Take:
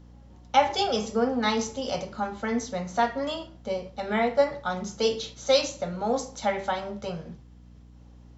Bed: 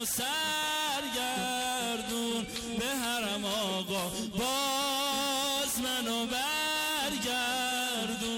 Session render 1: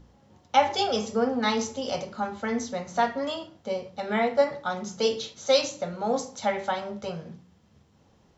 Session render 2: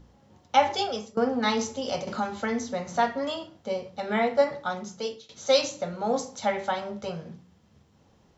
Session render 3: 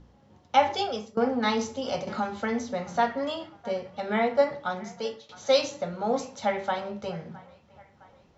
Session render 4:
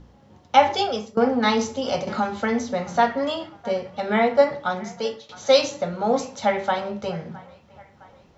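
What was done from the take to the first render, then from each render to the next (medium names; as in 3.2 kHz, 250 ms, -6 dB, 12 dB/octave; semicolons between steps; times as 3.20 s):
de-hum 60 Hz, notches 5
0.70–1.17 s: fade out, to -19 dB; 2.07–2.96 s: three bands compressed up and down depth 70%; 4.65–5.29 s: fade out, to -22.5 dB
distance through air 68 m; feedback echo behind a band-pass 662 ms, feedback 50%, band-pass 1.3 kHz, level -19 dB
trim +5.5 dB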